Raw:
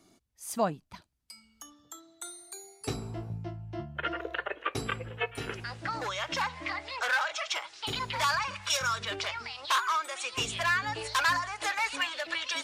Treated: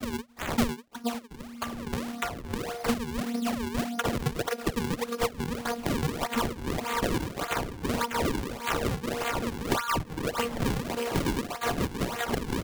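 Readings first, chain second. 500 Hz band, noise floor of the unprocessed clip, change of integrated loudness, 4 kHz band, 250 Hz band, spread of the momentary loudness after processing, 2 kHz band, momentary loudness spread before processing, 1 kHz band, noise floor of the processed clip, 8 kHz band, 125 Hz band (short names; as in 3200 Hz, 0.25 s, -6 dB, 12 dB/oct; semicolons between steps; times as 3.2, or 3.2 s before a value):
+7.0 dB, -66 dBFS, +1.0 dB, -3.0 dB, +13.0 dB, 6 LU, -4.0 dB, 15 LU, 0.0 dB, -45 dBFS, 0.0 dB, +8.0 dB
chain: on a send: echo 0.455 s -14 dB; on the sum: AM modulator 68 Hz, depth 75%; vocoder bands 32, saw 236 Hz; decimation with a swept rate 40×, swing 160% 1.7 Hz; three-band squash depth 100%; gain +7.5 dB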